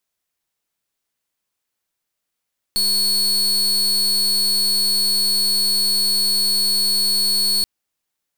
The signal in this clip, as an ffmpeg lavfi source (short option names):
-f lavfi -i "aevalsrc='0.126*(2*lt(mod(4390*t,1),0.37)-1)':d=4.88:s=44100"